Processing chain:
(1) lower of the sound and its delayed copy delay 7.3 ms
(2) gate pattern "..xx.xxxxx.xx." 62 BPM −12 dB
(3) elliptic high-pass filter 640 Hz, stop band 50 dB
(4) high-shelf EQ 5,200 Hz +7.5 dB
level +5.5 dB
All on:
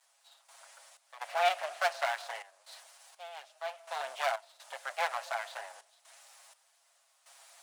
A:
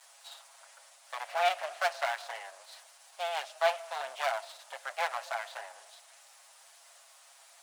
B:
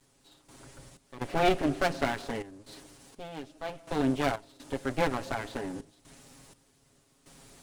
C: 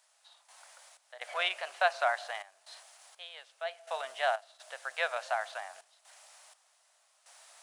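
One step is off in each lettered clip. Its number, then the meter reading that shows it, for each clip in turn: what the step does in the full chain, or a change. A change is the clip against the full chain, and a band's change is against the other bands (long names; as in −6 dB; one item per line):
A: 2, change in integrated loudness +1.0 LU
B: 3, 500 Hz band +5.0 dB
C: 1, 8 kHz band −4.0 dB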